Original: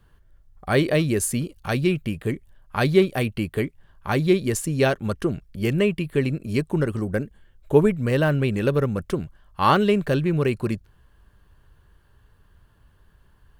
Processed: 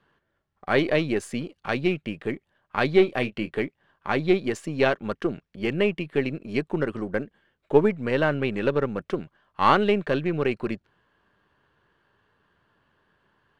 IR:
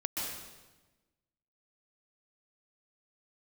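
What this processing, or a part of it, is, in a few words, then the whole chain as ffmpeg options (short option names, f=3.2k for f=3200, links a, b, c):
crystal radio: -filter_complex "[0:a]highpass=220,lowpass=2.5k,highshelf=f=3k:g=9,aeval=exprs='if(lt(val(0),0),0.708*val(0),val(0))':c=same,asettb=1/sr,asplit=3[a][b][c];[a]atrim=end=2.944[d];[b]atrim=start=2.94:end=3.55,asetpts=PTS-STARTPTS,afade=t=in:d=0.004:c=qsin,afade=t=out:st=0.606:d=0.004:c=qsin,asplit=2[e][f];[f]adelay=24,volume=-11dB[g];[e][g]amix=inputs=2:normalize=0,atrim=end_sample=26901[h];[c]atrim=start=3.546[i];[d][h]acrossfade=d=0.004:c1=hsin:c2=qsin[j];[j][i]acrossfade=d=0.004:c1=qsin:c2=hsin"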